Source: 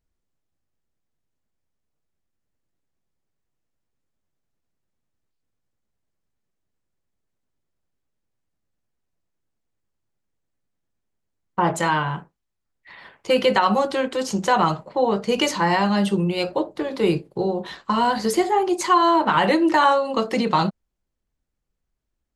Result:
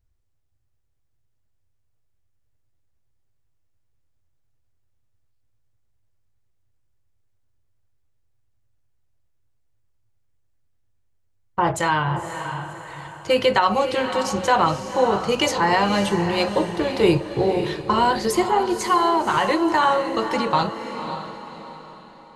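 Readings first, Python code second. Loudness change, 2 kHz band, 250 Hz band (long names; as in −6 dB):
0.0 dB, +1.0 dB, −1.5 dB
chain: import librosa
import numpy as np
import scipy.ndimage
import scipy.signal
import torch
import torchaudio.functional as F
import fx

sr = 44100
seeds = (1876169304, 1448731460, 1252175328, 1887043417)

p1 = fx.low_shelf_res(x, sr, hz=140.0, db=7.5, q=3.0)
p2 = fx.rider(p1, sr, range_db=10, speed_s=2.0)
y = p2 + fx.echo_diffused(p2, sr, ms=542, feedback_pct=41, wet_db=-8.5, dry=0)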